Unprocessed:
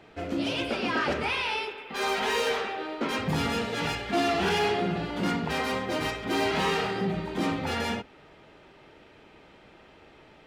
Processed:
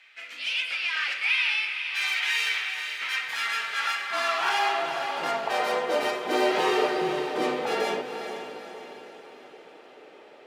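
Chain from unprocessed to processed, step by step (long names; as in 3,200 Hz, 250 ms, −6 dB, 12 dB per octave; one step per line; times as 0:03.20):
high-pass filter sweep 2,200 Hz → 470 Hz, 0:02.91–0:06.15
frequency shifter −25 Hz
feedback delay with all-pass diffusion 451 ms, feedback 50%, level −8 dB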